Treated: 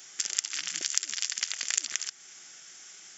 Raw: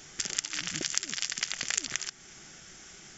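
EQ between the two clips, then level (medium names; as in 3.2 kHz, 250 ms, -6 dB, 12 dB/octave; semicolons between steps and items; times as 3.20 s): high-pass 1 kHz 6 dB/octave; treble shelf 6 kHz +7.5 dB; -1.5 dB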